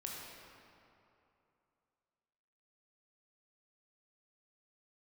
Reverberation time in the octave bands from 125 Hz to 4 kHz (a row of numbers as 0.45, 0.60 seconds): 2.8, 2.8, 2.8, 2.8, 2.3, 1.7 seconds